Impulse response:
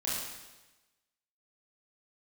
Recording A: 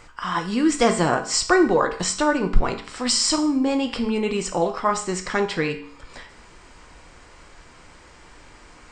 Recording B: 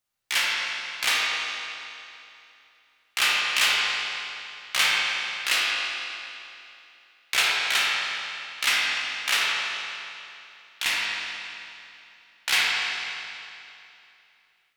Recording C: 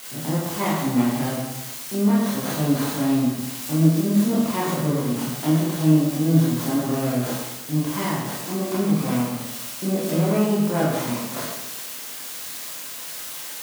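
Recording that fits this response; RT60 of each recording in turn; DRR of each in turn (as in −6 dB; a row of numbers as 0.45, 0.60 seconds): C; 0.55, 2.8, 1.1 seconds; 5.0, −5.0, −8.0 decibels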